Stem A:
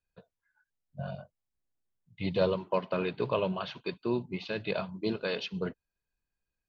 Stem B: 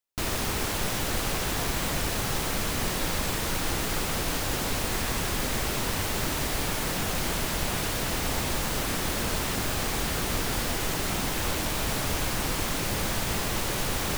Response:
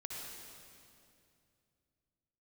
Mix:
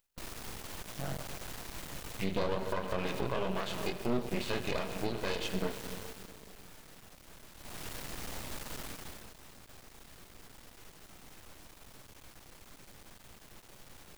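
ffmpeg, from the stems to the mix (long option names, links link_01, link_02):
-filter_complex "[0:a]dynaudnorm=framelen=160:gausssize=17:maxgain=8dB,flanger=delay=20:depth=5.4:speed=0.69,volume=0dB,asplit=3[link_01][link_02][link_03];[link_02]volume=-5dB[link_04];[1:a]acompressor=mode=upward:threshold=-56dB:ratio=2.5,asoftclip=type=tanh:threshold=-26.5dB,volume=4dB,afade=type=out:start_time=5.87:duration=0.48:silence=0.298538,afade=type=in:start_time=7.55:duration=0.31:silence=0.251189,afade=type=out:start_time=8.81:duration=0.53:silence=0.251189[link_05];[link_03]apad=whole_len=624918[link_06];[link_05][link_06]sidechaincompress=threshold=-33dB:ratio=8:attack=28:release=176[link_07];[2:a]atrim=start_sample=2205[link_08];[link_04][link_08]afir=irnorm=-1:irlink=0[link_09];[link_01][link_07][link_09]amix=inputs=3:normalize=0,aeval=exprs='max(val(0),0)':channel_layout=same,alimiter=limit=-20dB:level=0:latency=1:release=248"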